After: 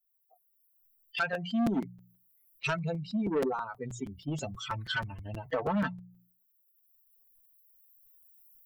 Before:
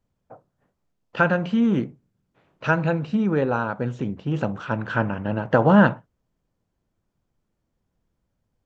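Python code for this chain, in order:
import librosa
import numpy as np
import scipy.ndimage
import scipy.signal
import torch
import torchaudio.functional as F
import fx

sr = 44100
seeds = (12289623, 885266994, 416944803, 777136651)

y = fx.bin_expand(x, sr, power=3.0)
y = fx.recorder_agc(y, sr, target_db=-12.5, rise_db_per_s=8.5, max_gain_db=30)
y = fx.low_shelf(y, sr, hz=370.0, db=11.0, at=(1.33, 3.53))
y = 10.0 ** (-17.5 / 20.0) * np.tanh(y / 10.0 ** (-17.5 / 20.0))
y = fx.low_shelf(y, sr, hz=170.0, db=-10.0)
y = fx.hum_notches(y, sr, base_hz=60, count=3)
y = y + 0.56 * np.pad(y, (int(4.5 * sr / 1000.0), 0))[:len(y)]
y = fx.buffer_crackle(y, sr, first_s=0.38, period_s=0.16, block=256, kind='repeat')
y = fx.env_flatten(y, sr, amount_pct=50)
y = y * 10.0 ** (-8.0 / 20.0)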